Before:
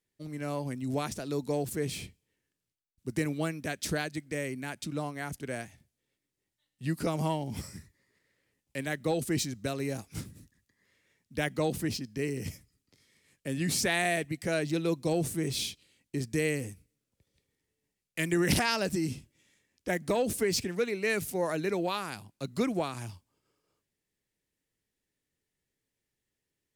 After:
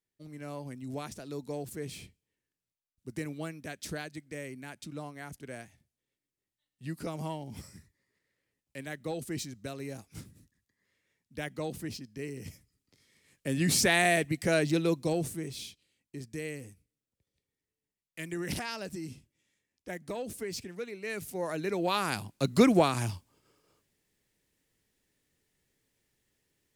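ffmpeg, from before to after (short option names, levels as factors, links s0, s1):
-af "volume=10.6,afade=t=in:st=12.51:d=1.22:silence=0.316228,afade=t=out:st=14.64:d=0.9:silence=0.237137,afade=t=in:st=21.02:d=0.77:silence=0.398107,afade=t=in:st=21.79:d=0.38:silence=0.354813"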